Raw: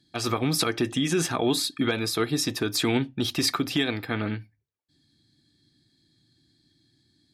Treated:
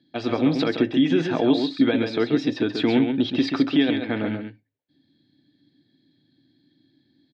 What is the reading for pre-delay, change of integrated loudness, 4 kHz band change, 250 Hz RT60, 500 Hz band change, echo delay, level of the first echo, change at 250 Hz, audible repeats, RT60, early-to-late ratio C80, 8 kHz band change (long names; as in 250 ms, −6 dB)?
no reverb audible, +4.0 dB, −2.5 dB, no reverb audible, +5.0 dB, 133 ms, −6.5 dB, +7.5 dB, 1, no reverb audible, no reverb audible, below −20 dB